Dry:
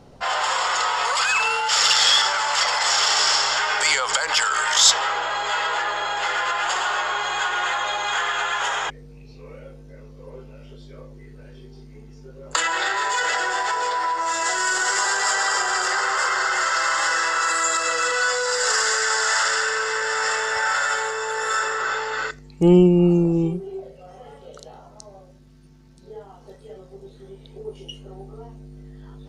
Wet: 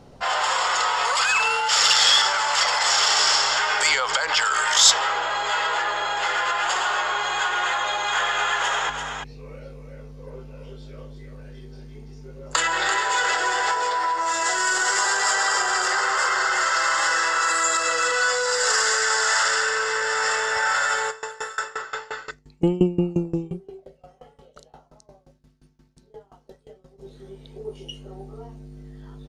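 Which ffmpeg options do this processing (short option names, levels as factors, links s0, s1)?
-filter_complex "[0:a]asettb=1/sr,asplit=3[s0][s1][s2];[s0]atrim=end=3.894[s3];[s1]atrim=start=3.89:end=4.45,asetpts=PTS-STARTPTS,afade=t=in:d=0.004:c=qsin,afade=t=out:st=0.556:d=0.004:c=qsin,lowpass=5800[s4];[s2]atrim=start=4.446[s5];[s3][s4]acrossfade=d=0.004:c1=hsin:c2=qsin[s6];[s6][s5]acrossfade=d=0.004:c1=qsin:c2=hsin,asplit=3[s7][s8][s9];[s7]afade=t=out:st=8.14:d=0.02[s10];[s8]aecho=1:1:339:0.473,afade=t=in:st=8.14:d=0.02,afade=t=out:st=13.73:d=0.02[s11];[s9]afade=t=in:st=13.73:d=0.02[s12];[s10][s11][s12]amix=inputs=3:normalize=0,asplit=3[s13][s14][s15];[s13]afade=t=out:st=21.1:d=0.02[s16];[s14]aeval=exprs='val(0)*pow(10,-23*if(lt(mod(5.7*n/s,1),2*abs(5.7)/1000),1-mod(5.7*n/s,1)/(2*abs(5.7)/1000),(mod(5.7*n/s,1)-2*abs(5.7)/1000)/(1-2*abs(5.7)/1000))/20)':c=same,afade=t=in:st=21.1:d=0.02,afade=t=out:st=26.98:d=0.02[s17];[s15]afade=t=in:st=26.98:d=0.02[s18];[s16][s17][s18]amix=inputs=3:normalize=0"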